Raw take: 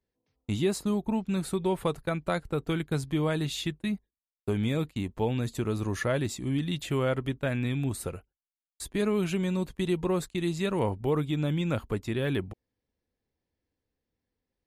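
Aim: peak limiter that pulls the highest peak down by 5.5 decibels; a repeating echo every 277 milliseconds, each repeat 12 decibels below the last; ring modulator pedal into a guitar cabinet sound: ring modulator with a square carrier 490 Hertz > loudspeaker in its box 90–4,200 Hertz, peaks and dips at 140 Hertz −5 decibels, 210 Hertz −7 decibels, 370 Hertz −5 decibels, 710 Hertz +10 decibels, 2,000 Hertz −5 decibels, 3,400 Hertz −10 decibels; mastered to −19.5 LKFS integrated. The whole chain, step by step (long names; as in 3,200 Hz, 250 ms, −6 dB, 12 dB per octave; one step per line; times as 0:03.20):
brickwall limiter −20 dBFS
repeating echo 277 ms, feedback 25%, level −12 dB
ring modulator with a square carrier 490 Hz
loudspeaker in its box 90–4,200 Hz, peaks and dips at 140 Hz −5 dB, 210 Hz −7 dB, 370 Hz −5 dB, 710 Hz +10 dB, 2,000 Hz −5 dB, 3,400 Hz −10 dB
level +8.5 dB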